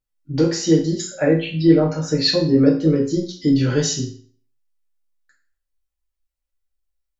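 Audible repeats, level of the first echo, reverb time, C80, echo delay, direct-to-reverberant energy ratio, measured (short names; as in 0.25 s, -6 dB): none, none, 0.45 s, 11.0 dB, none, -6.5 dB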